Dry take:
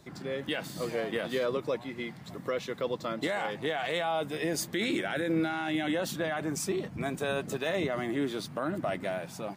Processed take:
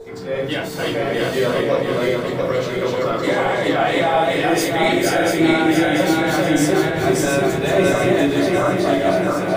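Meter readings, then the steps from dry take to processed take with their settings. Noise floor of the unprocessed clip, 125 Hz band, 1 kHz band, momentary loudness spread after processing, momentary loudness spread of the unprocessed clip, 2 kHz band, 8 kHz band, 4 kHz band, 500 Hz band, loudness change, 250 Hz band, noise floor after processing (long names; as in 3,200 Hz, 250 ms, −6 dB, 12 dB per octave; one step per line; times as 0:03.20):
−47 dBFS, +15.0 dB, +15.5 dB, 5 LU, 5 LU, +13.5 dB, +12.0 dB, +12.0 dB, +14.5 dB, +14.5 dB, +14.5 dB, −25 dBFS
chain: feedback delay that plays each chunk backwards 345 ms, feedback 69%, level −1 dB
steady tone 450 Hz −36 dBFS
rectangular room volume 170 cubic metres, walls furnished, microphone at 4.8 metres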